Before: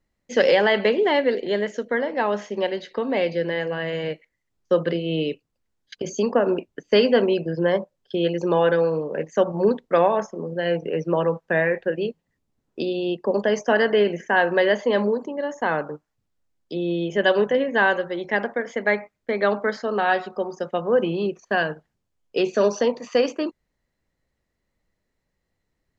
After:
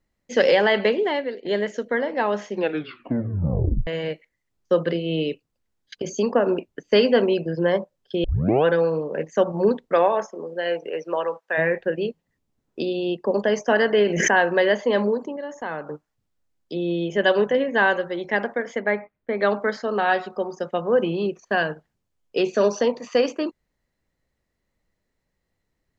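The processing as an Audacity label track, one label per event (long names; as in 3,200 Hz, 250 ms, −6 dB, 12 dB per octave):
0.850000	1.450000	fade out, to −15.5 dB
2.510000	2.510000	tape stop 1.36 s
8.240000	8.240000	tape start 0.41 s
9.930000	11.570000	high-pass filter 260 Hz → 670 Hz
13.980000	14.490000	background raised ahead of every attack at most 31 dB per second
15.360000	15.880000	downward compressor 1.5 to 1, threshold −38 dBFS
18.800000	19.400000	high-frequency loss of the air 350 metres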